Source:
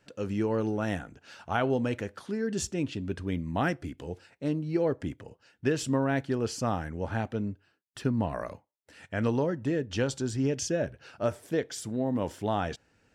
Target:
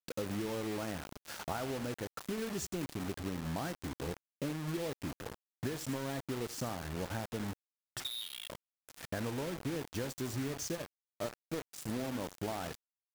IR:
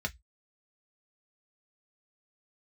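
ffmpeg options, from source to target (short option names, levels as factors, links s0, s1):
-filter_complex "[0:a]asplit=3[s0][s1][s2];[s0]afade=t=out:st=9.36:d=0.02[s3];[s1]adynamicsmooth=sensitivity=3.5:basefreq=1100,afade=t=in:st=9.36:d=0.02,afade=t=out:st=9.94:d=0.02[s4];[s2]afade=t=in:st=9.94:d=0.02[s5];[s3][s4][s5]amix=inputs=3:normalize=0,asettb=1/sr,asplit=3[s6][s7][s8];[s6]atrim=end=10.754[s9];[s7]atrim=start=10.75:end=11.89,asetpts=PTS-STARTPTS,afade=t=in:d=0.004:c=qsin,afade=t=out:st=1.136:d=0.004:c=qsin,aeval=exprs='0.158*(cos(1*acos(clip(val(0)/0.158,-1,1)))-cos(1*PI/2))+0.0355*(cos(3*acos(clip(val(0)/0.158,-1,1)))-cos(3*PI/2))':c=same[s10];[s8]atrim=start=11.886[s11];[s9][s10]acrossfade=d=0.004:c1=hsin:c2=qsin[s12];[s12][s11]acrossfade=d=0.004:c1=qsin:c2=hsin,acrusher=bits=8:mode=log:mix=0:aa=0.000001,asplit=2[s13][s14];[1:a]atrim=start_sample=2205,afade=t=out:st=0.19:d=0.01,atrim=end_sample=8820,lowpass=4800[s15];[s14][s15]afir=irnorm=-1:irlink=0,volume=0.0841[s16];[s13][s16]amix=inputs=2:normalize=0,acompressor=threshold=0.00891:ratio=12,asettb=1/sr,asplit=3[s17][s18][s19];[s17]atrim=end=8.004[s20];[s18]atrim=start=8:end=8.5,asetpts=PTS-STARTPTS,afade=t=in:d=0.004:c=qsin,afade=t=out:st=0.496:d=0.004:c=qsin,lowpass=f=3300:t=q:w=0.5098,lowpass=f=3300:t=q:w=0.6013,lowpass=f=3300:t=q:w=0.9,lowpass=f=3300:t=q:w=2.563,afreqshift=-3900[s21];[s19]atrim=start=8.496[s22];[s20][s21]acrossfade=d=0.004:c1=hsin:c2=qsin[s23];[s23][s22]acrossfade=d=0.004:c1=qsin:c2=hsin,equalizer=f=2800:t=o:w=1.2:g=-6.5,aecho=1:1:79:0.158,acrusher=bits=7:mix=0:aa=0.000001,volume=2"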